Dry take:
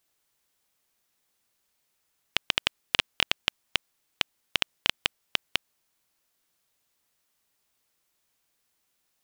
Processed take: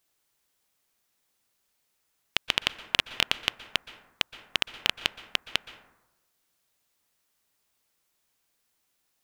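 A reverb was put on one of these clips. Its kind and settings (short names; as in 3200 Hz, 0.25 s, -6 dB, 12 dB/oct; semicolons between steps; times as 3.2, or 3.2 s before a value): plate-style reverb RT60 1 s, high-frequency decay 0.35×, pre-delay 0.11 s, DRR 14 dB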